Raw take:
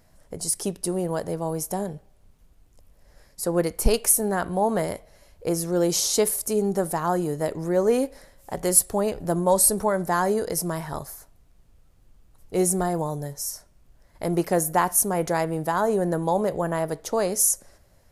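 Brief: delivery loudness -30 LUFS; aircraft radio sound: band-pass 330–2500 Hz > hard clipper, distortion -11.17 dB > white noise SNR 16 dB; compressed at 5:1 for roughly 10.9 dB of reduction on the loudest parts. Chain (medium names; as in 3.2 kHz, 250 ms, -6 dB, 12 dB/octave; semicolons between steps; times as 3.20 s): compression 5:1, threshold -24 dBFS; band-pass 330–2500 Hz; hard clipper -26.5 dBFS; white noise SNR 16 dB; trim +4 dB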